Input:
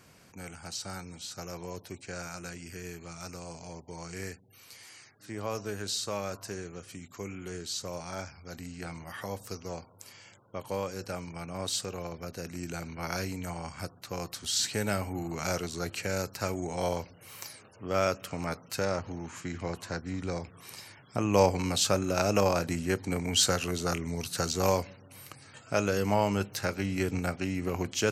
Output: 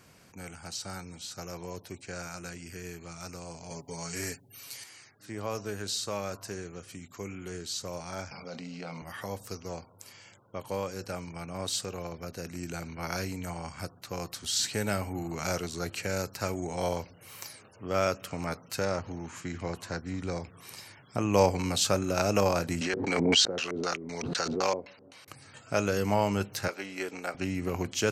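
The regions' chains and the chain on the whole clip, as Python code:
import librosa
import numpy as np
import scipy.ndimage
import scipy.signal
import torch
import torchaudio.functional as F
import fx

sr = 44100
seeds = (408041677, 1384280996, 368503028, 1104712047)

y = fx.chain(x, sr, fx.high_shelf(hz=4100.0, db=8.0),
    fx.comb(ms=7.2, depth=1.0), at=(3.7, 4.84))
y = fx.chain(y, sr, fx.cabinet(low_hz=160.0, low_slope=24, high_hz=5400.0, hz=(330.0, 540.0, 1700.0), db=(-9, 6, -9)),
    fx.env_flatten(amount_pct=70), at=(8.31, 9.02))
y = fx.chain(y, sr, fx.weighting(curve='A'),
    fx.filter_lfo_lowpass(shape='square', hz=3.9, low_hz=400.0, high_hz=5200.0, q=1.2),
    fx.pre_swell(db_per_s=29.0), at=(22.81, 25.28))
y = fx.chain(y, sr, fx.highpass(hz=440.0, slope=12),
    fx.high_shelf(hz=8300.0, db=-8.0), at=(26.68, 27.35))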